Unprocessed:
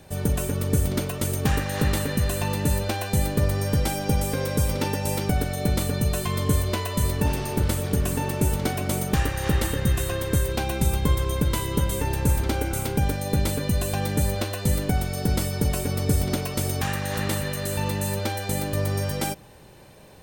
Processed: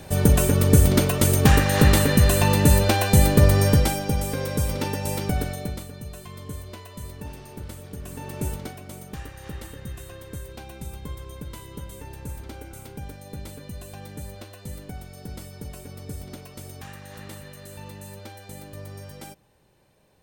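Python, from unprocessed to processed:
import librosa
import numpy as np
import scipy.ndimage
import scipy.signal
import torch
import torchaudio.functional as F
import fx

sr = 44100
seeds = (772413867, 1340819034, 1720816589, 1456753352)

y = fx.gain(x, sr, db=fx.line((3.67, 7.0), (4.08, -1.5), (5.48, -1.5), (5.89, -14.0), (7.98, -14.0), (8.47, -5.5), (8.81, -14.0)))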